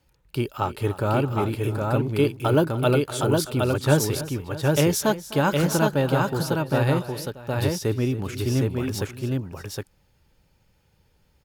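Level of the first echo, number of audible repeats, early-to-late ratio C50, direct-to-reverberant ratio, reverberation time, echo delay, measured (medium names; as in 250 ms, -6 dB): -19.5 dB, 4, no reverb, no reverb, no reverb, 253 ms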